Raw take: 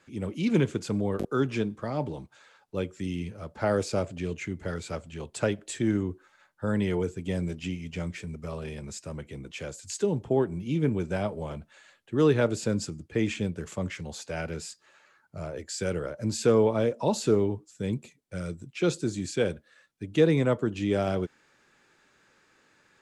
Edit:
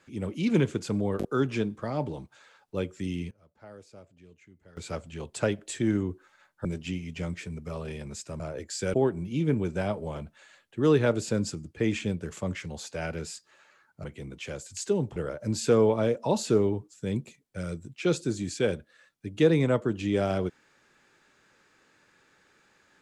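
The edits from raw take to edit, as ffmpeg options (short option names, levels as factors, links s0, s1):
-filter_complex "[0:a]asplit=8[s0][s1][s2][s3][s4][s5][s6][s7];[s0]atrim=end=3.31,asetpts=PTS-STARTPTS,afade=t=out:st=3.11:d=0.2:c=log:silence=0.0794328[s8];[s1]atrim=start=3.31:end=4.77,asetpts=PTS-STARTPTS,volume=0.0794[s9];[s2]atrim=start=4.77:end=6.652,asetpts=PTS-STARTPTS,afade=t=in:d=0.2:c=log:silence=0.0794328[s10];[s3]atrim=start=7.418:end=9.172[s11];[s4]atrim=start=15.388:end=15.932[s12];[s5]atrim=start=10.288:end=15.392[s13];[s6]atrim=start=9.168:end=10.292[s14];[s7]atrim=start=15.928[s15];[s8][s9][s10]concat=n=3:v=0:a=1[s16];[s16][s11]acrossfade=d=0.004:c1=hsin:c2=hsin[s17];[s17][s12]acrossfade=d=0.004:c1=hsin:c2=hsin[s18];[s18][s13]acrossfade=d=0.004:c1=hsin:c2=hsin[s19];[s19][s14]acrossfade=d=0.004:c1=hsin:c2=hsin[s20];[s20][s15]acrossfade=d=0.004:c1=hsin:c2=hsin"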